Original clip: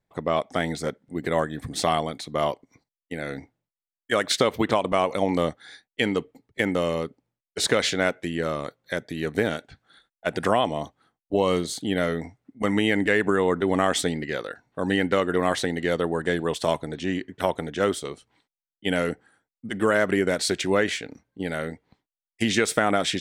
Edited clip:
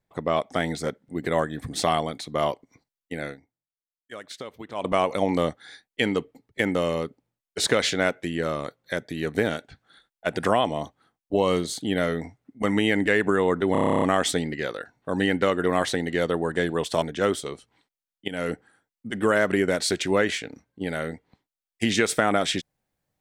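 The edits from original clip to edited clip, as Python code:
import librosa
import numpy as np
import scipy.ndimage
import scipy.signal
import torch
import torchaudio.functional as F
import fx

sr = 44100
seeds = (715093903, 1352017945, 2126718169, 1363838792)

y = fx.edit(x, sr, fx.fade_down_up(start_s=3.25, length_s=1.61, db=-16.5, fade_s=0.12),
    fx.stutter(start_s=13.72, slice_s=0.03, count=11),
    fx.cut(start_s=16.72, length_s=0.89),
    fx.fade_in_from(start_s=18.87, length_s=0.25, floor_db=-16.0), tone=tone)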